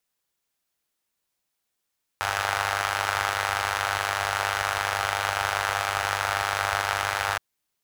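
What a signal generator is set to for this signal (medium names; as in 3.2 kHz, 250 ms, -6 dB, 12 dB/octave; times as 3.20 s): four-cylinder engine model, steady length 5.17 s, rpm 3000, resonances 83/830/1300 Hz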